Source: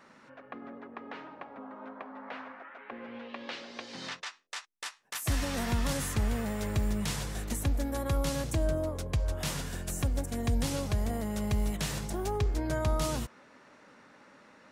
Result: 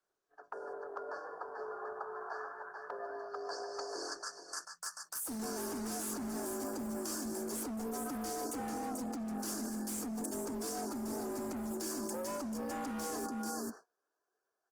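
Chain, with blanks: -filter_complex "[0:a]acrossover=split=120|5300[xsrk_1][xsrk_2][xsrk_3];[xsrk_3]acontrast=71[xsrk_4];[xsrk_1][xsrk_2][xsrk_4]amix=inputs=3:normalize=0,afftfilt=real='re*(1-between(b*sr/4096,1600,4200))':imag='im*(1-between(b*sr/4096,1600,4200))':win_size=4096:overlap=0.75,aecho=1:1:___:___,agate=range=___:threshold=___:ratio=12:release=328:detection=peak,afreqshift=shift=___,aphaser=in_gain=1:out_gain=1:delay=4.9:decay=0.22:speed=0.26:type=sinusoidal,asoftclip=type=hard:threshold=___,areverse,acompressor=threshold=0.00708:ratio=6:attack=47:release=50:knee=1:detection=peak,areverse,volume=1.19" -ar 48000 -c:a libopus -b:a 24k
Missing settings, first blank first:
438, 0.422, 0.0251, 0.00398, 170, 0.0355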